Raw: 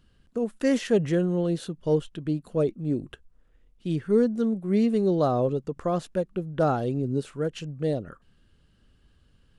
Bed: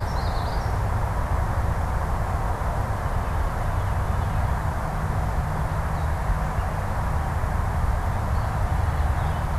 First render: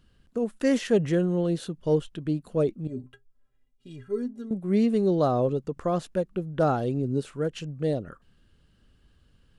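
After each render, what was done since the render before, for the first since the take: 2.87–4.51 metallic resonator 120 Hz, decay 0.23 s, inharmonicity 0.03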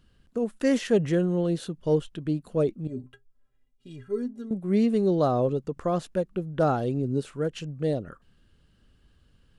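nothing audible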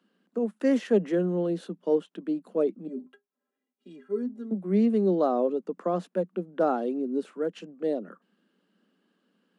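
steep high-pass 180 Hz 96 dB/oct; high shelf 2600 Hz -11.5 dB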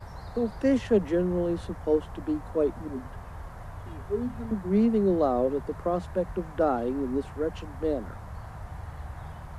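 add bed -16 dB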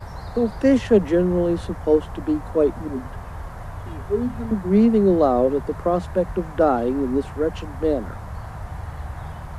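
gain +7 dB

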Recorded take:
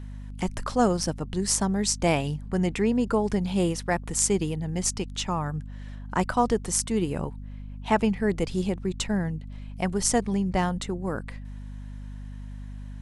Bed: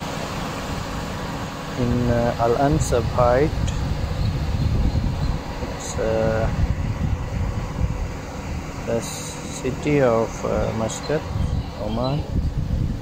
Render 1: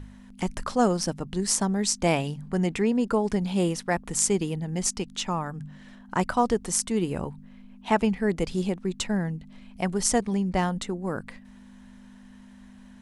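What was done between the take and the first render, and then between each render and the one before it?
de-hum 50 Hz, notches 3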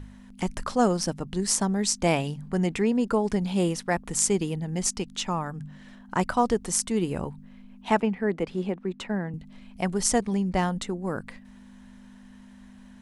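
8–9.34 three-band isolator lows -13 dB, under 170 Hz, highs -15 dB, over 2900 Hz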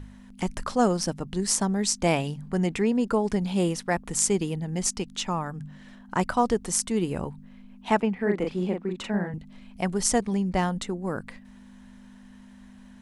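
8.15–9.38 doubler 39 ms -3.5 dB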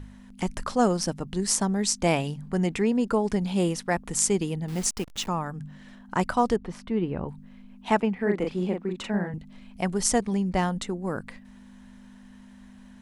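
4.68–5.28 level-crossing sampler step -37.5 dBFS; 6.56–7.29 air absorption 380 m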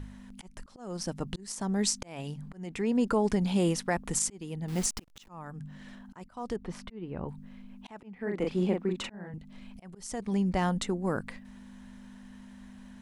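limiter -16.5 dBFS, peak gain reduction 10 dB; auto swell 0.539 s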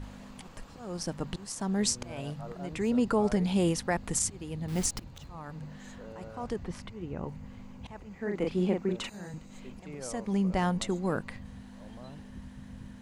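add bed -25 dB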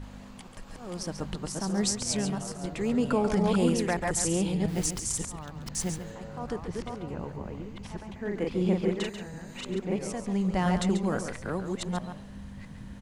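reverse delay 0.666 s, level -2 dB; echo 0.139 s -9 dB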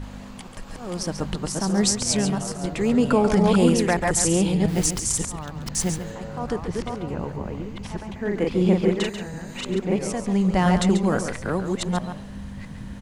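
gain +7 dB

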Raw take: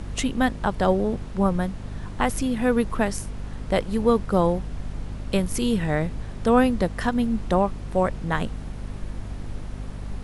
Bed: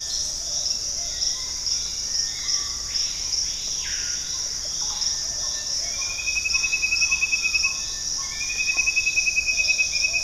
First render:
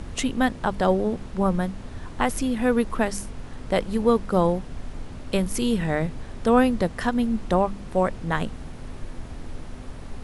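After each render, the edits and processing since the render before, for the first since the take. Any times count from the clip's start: de-hum 50 Hz, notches 4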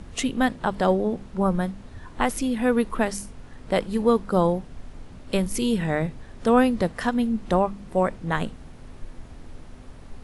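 noise print and reduce 6 dB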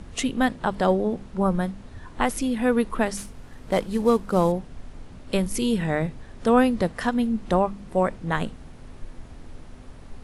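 3.17–4.52 CVSD 64 kbps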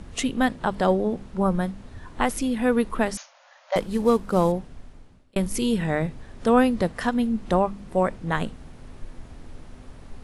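3.17–3.76 brick-wall FIR band-pass 520–6900 Hz; 4.55–5.36 fade out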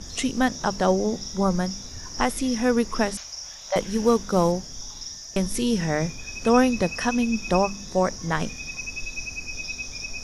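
add bed -12.5 dB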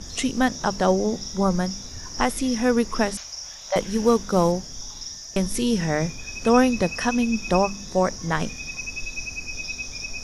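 gain +1 dB

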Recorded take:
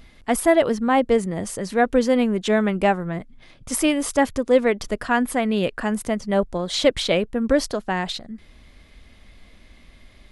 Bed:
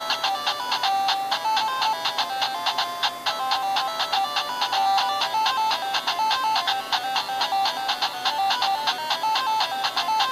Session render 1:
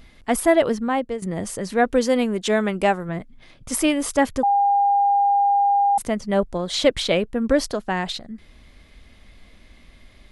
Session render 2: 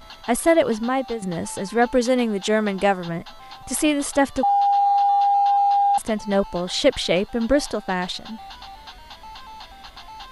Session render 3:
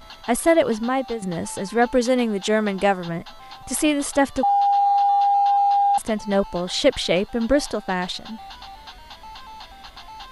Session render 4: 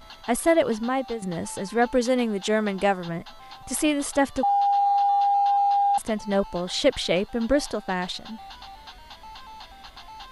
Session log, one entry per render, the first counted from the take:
0.7–1.22 fade out, to -14.5 dB; 1.94–3.09 tone controls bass -4 dB, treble +5 dB; 4.43–5.98 bleep 805 Hz -14.5 dBFS
add bed -17.5 dB
nothing audible
gain -3 dB

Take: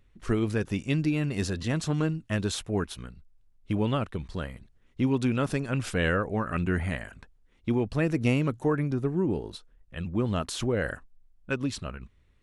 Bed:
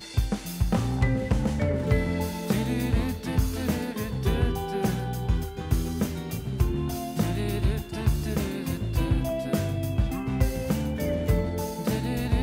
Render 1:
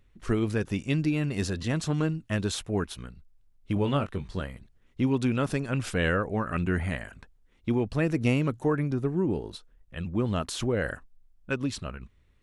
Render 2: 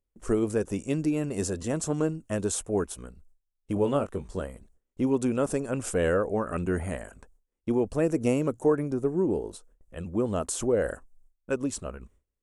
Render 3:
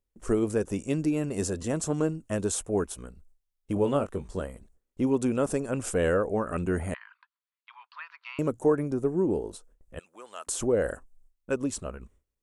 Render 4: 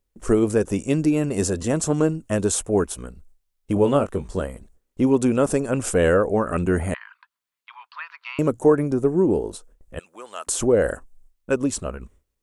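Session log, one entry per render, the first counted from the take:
3.74–4.42 doubler 21 ms -7 dB
gate with hold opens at -49 dBFS; graphic EQ 125/500/2000/4000/8000 Hz -7/+6/-6/-11/+11 dB
6.94–8.39 Chebyshev band-pass 970–4600 Hz, order 5; 9.99–10.47 HPF 1400 Hz
gain +7 dB

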